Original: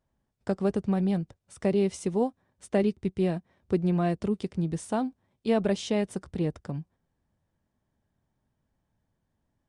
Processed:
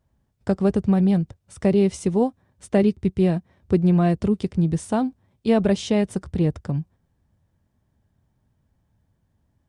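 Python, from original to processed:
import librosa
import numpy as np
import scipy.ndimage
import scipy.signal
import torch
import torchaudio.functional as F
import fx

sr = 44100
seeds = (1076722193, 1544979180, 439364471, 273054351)

y = fx.peak_eq(x, sr, hz=82.0, db=8.5, octaves=2.1)
y = F.gain(torch.from_numpy(y), 4.5).numpy()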